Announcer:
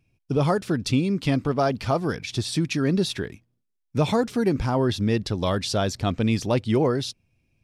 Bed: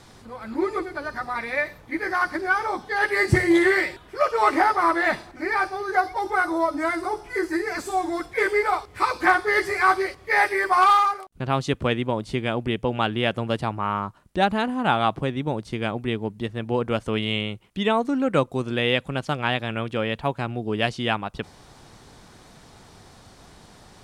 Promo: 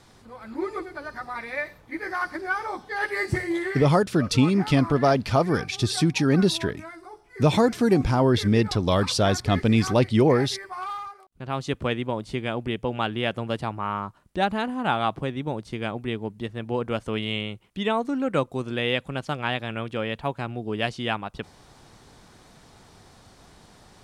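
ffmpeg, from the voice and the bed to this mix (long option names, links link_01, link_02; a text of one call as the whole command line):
ffmpeg -i stem1.wav -i stem2.wav -filter_complex "[0:a]adelay=3450,volume=2.5dB[link_01];[1:a]volume=8.5dB,afade=type=out:start_time=3.1:duration=0.85:silence=0.266073,afade=type=in:start_time=11.14:duration=0.61:silence=0.211349[link_02];[link_01][link_02]amix=inputs=2:normalize=0" out.wav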